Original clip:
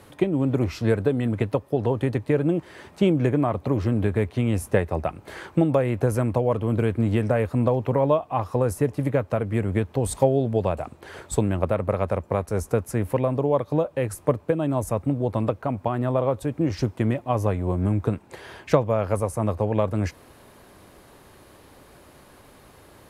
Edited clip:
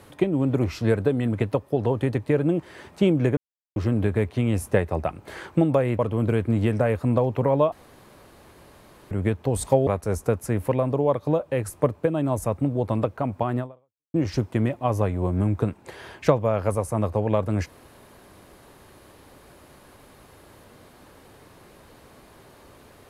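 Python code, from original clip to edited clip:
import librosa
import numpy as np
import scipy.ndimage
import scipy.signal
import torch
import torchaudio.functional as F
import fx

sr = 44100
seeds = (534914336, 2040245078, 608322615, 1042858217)

y = fx.edit(x, sr, fx.silence(start_s=3.37, length_s=0.39),
    fx.cut(start_s=5.99, length_s=0.5),
    fx.room_tone_fill(start_s=8.22, length_s=1.39),
    fx.cut(start_s=10.37, length_s=1.95),
    fx.fade_out_span(start_s=16.04, length_s=0.55, curve='exp'), tone=tone)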